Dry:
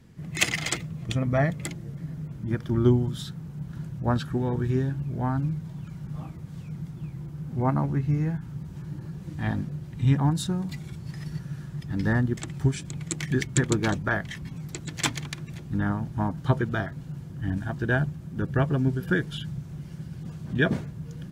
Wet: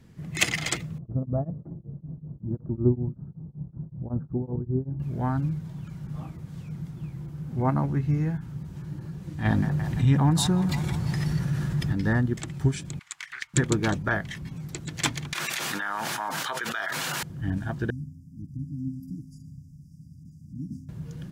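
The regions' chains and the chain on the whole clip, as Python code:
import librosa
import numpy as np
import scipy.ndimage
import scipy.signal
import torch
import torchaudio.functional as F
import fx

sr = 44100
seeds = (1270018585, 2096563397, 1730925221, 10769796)

y = fx.chain(x, sr, fx.gaussian_blur(sigma=11.0),
    fx.tremolo_abs(hz=5.3), at=(0.98, 5.0))
y = fx.chain(y, sr, fx.echo_wet_bandpass(ms=171, feedback_pct=65, hz=1100.0, wet_db=-12.0),
    fx.env_flatten(amount_pct=50), at=(9.45, 11.93))
y = fx.chain(y, sr, fx.cheby2_highpass(hz=530.0, order=4, stop_db=40),
    fx.tilt_eq(slope=-2.0),
    fx.doppler_dist(depth_ms=0.39), at=(12.99, 13.54))
y = fx.chain(y, sr, fx.highpass(hz=1200.0, slope=12),
    fx.env_flatten(amount_pct=100), at=(15.33, 17.23))
y = fx.chain(y, sr, fx.brickwall_bandstop(low_hz=320.0, high_hz=4700.0),
    fx.comb_fb(f0_hz=87.0, decay_s=1.7, harmonics='odd', damping=0.0, mix_pct=70), at=(17.9, 20.89))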